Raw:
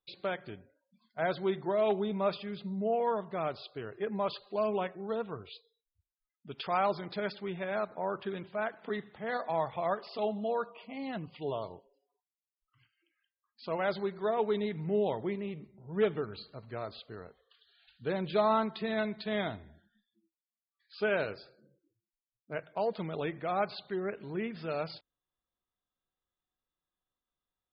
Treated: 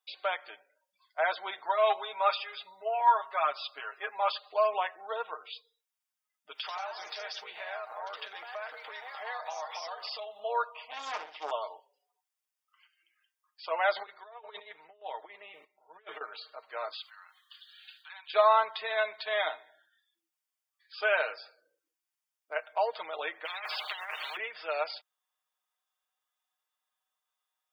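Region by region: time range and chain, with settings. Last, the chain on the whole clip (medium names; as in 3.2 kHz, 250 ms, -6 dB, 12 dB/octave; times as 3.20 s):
1.64–4.32 s: peaking EQ 450 Hz -6.5 dB 0.69 oct + comb 7.3 ms, depth 89%
6.55–10.40 s: treble shelf 3.4 kHz +9.5 dB + compression 20:1, threshold -39 dBFS + ever faster or slower copies 96 ms, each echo +2 st, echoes 2, each echo -6 dB
10.90–11.51 s: flutter echo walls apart 10.8 m, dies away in 0.48 s + loudspeaker Doppler distortion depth 0.77 ms
13.96–16.21 s: compressor with a negative ratio -35 dBFS, ratio -0.5 + square tremolo 1.9 Hz, depth 65%, duty 20%
16.93–18.34 s: compression 2.5:1, threshold -51 dBFS + steep high-pass 930 Hz + treble shelf 2.6 kHz +10.5 dB
23.45–24.37 s: compressor with a negative ratio -36 dBFS, ratio -0.5 + spectrum-flattening compressor 10:1
whole clip: high-pass 670 Hz 24 dB/octave; band-stop 4.1 kHz, Q 8.4; comb 6.5 ms, depth 58%; trim +5.5 dB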